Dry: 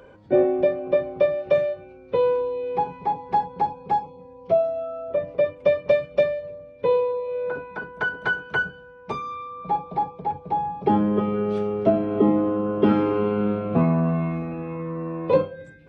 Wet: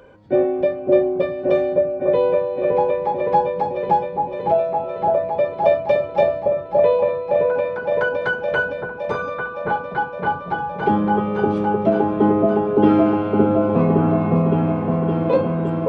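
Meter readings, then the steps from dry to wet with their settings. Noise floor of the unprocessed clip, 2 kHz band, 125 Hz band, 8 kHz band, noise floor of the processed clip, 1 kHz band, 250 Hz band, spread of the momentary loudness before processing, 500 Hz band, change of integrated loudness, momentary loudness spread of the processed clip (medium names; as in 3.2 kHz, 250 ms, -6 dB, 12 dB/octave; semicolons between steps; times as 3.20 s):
-46 dBFS, +3.0 dB, +5.0 dB, no reading, -31 dBFS, +5.0 dB, +5.0 dB, 11 LU, +4.5 dB, +4.5 dB, 7 LU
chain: delay with an opening low-pass 564 ms, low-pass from 750 Hz, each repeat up 1 oct, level 0 dB; trim +1 dB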